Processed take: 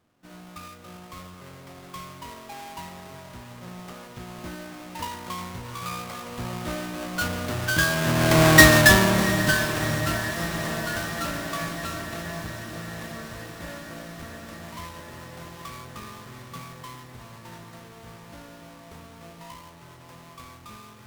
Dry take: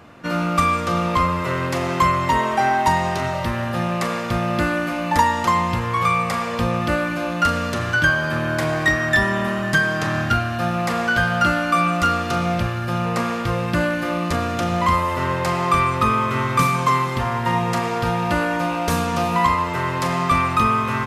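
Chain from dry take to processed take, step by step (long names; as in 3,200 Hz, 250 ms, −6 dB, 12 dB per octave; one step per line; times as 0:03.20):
each half-wave held at its own peak
source passing by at 0:08.62, 11 m/s, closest 2.6 metres
feedback delay with all-pass diffusion 717 ms, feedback 72%, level −13.5 dB
level +3 dB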